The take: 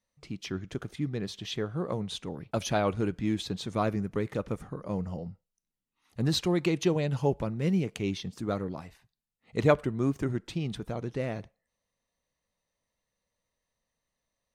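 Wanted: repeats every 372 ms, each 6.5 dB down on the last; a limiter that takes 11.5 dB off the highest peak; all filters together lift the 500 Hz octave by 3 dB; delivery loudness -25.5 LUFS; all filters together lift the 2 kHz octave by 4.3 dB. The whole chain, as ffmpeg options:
-af "equalizer=f=500:t=o:g=3.5,equalizer=f=2000:t=o:g=5.5,alimiter=limit=0.119:level=0:latency=1,aecho=1:1:372|744|1116|1488|1860|2232:0.473|0.222|0.105|0.0491|0.0231|0.0109,volume=1.78"

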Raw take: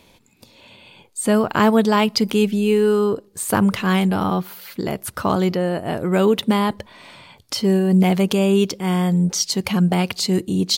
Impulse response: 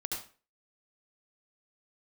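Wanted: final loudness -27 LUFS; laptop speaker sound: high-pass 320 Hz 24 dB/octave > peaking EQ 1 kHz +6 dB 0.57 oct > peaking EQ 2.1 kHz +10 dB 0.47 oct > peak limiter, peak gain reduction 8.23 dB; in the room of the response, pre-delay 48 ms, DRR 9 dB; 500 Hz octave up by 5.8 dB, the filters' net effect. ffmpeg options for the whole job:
-filter_complex "[0:a]equalizer=f=500:t=o:g=7.5,asplit=2[s0][s1];[1:a]atrim=start_sample=2205,adelay=48[s2];[s1][s2]afir=irnorm=-1:irlink=0,volume=0.282[s3];[s0][s3]amix=inputs=2:normalize=0,highpass=f=320:w=0.5412,highpass=f=320:w=1.3066,equalizer=f=1000:t=o:w=0.57:g=6,equalizer=f=2100:t=o:w=0.47:g=10,volume=0.355,alimiter=limit=0.158:level=0:latency=1"

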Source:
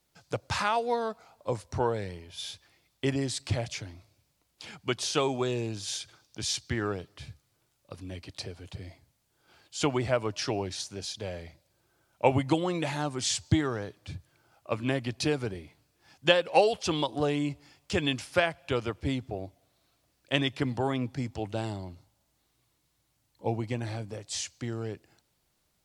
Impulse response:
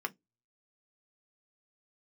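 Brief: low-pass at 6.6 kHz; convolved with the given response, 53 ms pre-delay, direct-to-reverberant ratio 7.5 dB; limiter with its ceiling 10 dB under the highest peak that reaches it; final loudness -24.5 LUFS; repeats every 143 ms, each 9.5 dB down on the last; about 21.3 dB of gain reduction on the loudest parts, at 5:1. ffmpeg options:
-filter_complex "[0:a]lowpass=6600,acompressor=threshold=0.00794:ratio=5,alimiter=level_in=2.99:limit=0.0631:level=0:latency=1,volume=0.335,aecho=1:1:143|286|429|572:0.335|0.111|0.0365|0.012,asplit=2[s0][s1];[1:a]atrim=start_sample=2205,adelay=53[s2];[s1][s2]afir=irnorm=-1:irlink=0,volume=0.282[s3];[s0][s3]amix=inputs=2:normalize=0,volume=11.9"

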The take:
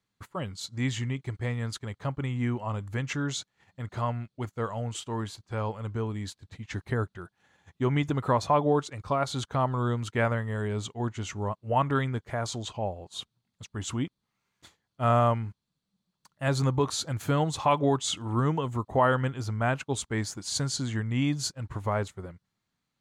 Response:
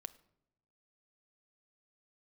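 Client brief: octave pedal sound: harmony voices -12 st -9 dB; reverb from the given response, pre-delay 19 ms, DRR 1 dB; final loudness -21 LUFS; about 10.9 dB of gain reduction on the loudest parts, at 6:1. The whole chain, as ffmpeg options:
-filter_complex "[0:a]acompressor=threshold=0.0316:ratio=6,asplit=2[s0][s1];[1:a]atrim=start_sample=2205,adelay=19[s2];[s1][s2]afir=irnorm=-1:irlink=0,volume=1.5[s3];[s0][s3]amix=inputs=2:normalize=0,asplit=2[s4][s5];[s5]asetrate=22050,aresample=44100,atempo=2,volume=0.355[s6];[s4][s6]amix=inputs=2:normalize=0,volume=3.98"

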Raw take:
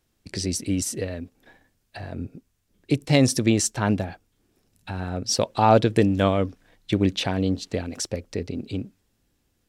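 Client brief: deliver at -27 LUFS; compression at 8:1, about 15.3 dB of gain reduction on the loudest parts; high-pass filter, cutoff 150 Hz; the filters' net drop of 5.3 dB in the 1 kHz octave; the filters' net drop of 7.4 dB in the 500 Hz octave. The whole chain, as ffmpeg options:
-af "highpass=150,equalizer=f=500:t=o:g=-8.5,equalizer=f=1000:t=o:g=-3.5,acompressor=threshold=0.0224:ratio=8,volume=3.76"

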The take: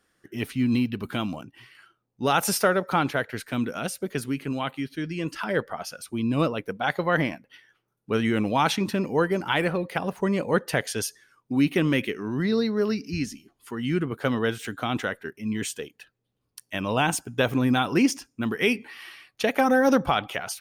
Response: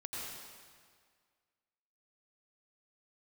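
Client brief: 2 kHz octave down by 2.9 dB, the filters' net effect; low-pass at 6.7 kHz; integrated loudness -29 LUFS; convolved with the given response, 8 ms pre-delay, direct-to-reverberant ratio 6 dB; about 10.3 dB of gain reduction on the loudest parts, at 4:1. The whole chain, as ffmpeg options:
-filter_complex "[0:a]lowpass=6700,equalizer=f=2000:t=o:g=-4,acompressor=threshold=0.0355:ratio=4,asplit=2[s0][s1];[1:a]atrim=start_sample=2205,adelay=8[s2];[s1][s2]afir=irnorm=-1:irlink=0,volume=0.473[s3];[s0][s3]amix=inputs=2:normalize=0,volume=1.5"

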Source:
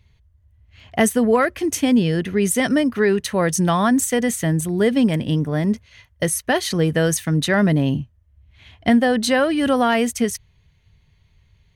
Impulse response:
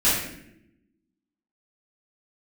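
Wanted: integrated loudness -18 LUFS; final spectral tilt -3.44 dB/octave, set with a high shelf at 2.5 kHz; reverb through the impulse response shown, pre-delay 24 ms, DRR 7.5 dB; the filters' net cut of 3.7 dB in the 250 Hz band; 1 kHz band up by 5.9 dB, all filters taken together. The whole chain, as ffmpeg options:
-filter_complex "[0:a]equalizer=f=250:t=o:g=-5,equalizer=f=1000:t=o:g=7,highshelf=f=2500:g=7.5,asplit=2[s0][s1];[1:a]atrim=start_sample=2205,adelay=24[s2];[s1][s2]afir=irnorm=-1:irlink=0,volume=0.0668[s3];[s0][s3]amix=inputs=2:normalize=0,volume=0.891"

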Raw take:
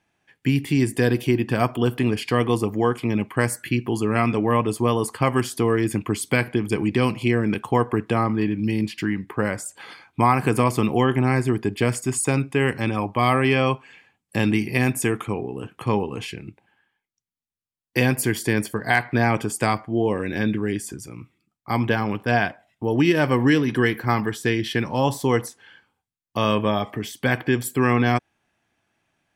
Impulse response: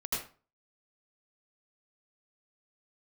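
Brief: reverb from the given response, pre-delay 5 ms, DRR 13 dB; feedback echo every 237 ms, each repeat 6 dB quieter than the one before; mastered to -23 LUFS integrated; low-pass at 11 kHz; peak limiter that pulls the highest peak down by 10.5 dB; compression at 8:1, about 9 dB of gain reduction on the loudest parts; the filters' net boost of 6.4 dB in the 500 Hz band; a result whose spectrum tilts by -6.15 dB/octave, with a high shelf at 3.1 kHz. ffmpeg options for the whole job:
-filter_complex "[0:a]lowpass=11000,equalizer=f=500:t=o:g=8,highshelf=f=3100:g=-5,acompressor=threshold=0.1:ratio=8,alimiter=limit=0.126:level=0:latency=1,aecho=1:1:237|474|711|948|1185|1422:0.501|0.251|0.125|0.0626|0.0313|0.0157,asplit=2[s0][s1];[1:a]atrim=start_sample=2205,adelay=5[s2];[s1][s2]afir=irnorm=-1:irlink=0,volume=0.126[s3];[s0][s3]amix=inputs=2:normalize=0,volume=1.78"

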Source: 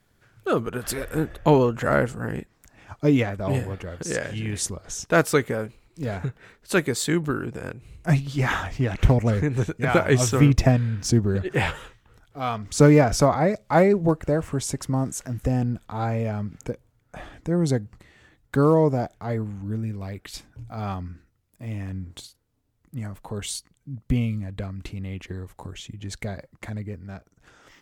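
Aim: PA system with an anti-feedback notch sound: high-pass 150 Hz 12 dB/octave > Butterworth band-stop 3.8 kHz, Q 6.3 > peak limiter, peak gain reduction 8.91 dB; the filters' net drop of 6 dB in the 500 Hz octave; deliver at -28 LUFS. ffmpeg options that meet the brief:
-af "highpass=150,asuperstop=centerf=3800:order=8:qfactor=6.3,equalizer=f=500:t=o:g=-7.5,volume=1.19,alimiter=limit=0.211:level=0:latency=1"

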